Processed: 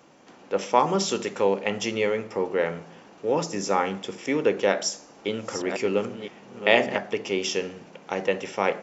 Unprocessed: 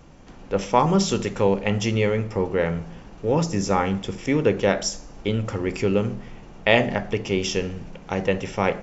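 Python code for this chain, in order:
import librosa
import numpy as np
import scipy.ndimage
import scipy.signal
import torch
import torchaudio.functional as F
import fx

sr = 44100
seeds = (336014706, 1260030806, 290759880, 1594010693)

y = fx.reverse_delay(x, sr, ms=549, wet_db=-9.0, at=(4.67, 6.97))
y = scipy.signal.sosfilt(scipy.signal.butter(2, 290.0, 'highpass', fs=sr, output='sos'), y)
y = F.gain(torch.from_numpy(y), -1.0).numpy()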